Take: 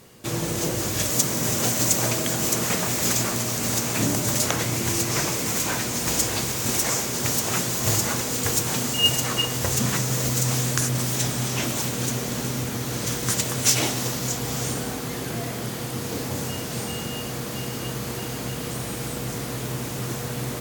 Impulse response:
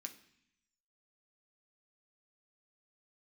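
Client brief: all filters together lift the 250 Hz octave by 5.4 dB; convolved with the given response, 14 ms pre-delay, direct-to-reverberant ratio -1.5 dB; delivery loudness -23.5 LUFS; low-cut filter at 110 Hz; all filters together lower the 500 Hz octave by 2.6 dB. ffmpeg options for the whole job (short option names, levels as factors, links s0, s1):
-filter_complex "[0:a]highpass=110,equalizer=f=250:t=o:g=8.5,equalizer=f=500:t=o:g=-6.5,asplit=2[s0][s1];[1:a]atrim=start_sample=2205,adelay=14[s2];[s1][s2]afir=irnorm=-1:irlink=0,volume=2[s3];[s0][s3]amix=inputs=2:normalize=0,volume=0.596"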